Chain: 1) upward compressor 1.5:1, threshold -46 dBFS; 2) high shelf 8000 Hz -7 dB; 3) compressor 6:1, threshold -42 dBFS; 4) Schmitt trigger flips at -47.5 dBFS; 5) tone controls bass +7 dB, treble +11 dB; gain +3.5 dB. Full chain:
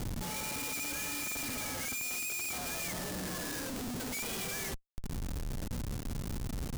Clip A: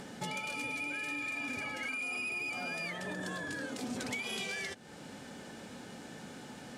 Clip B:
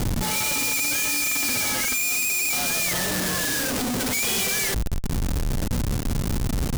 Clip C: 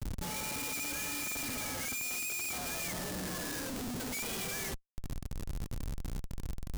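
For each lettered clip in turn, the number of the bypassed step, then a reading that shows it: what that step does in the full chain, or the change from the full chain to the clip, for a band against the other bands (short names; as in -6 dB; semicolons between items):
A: 4, crest factor change +4.5 dB; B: 3, mean gain reduction 8.5 dB; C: 1, momentary loudness spread change +3 LU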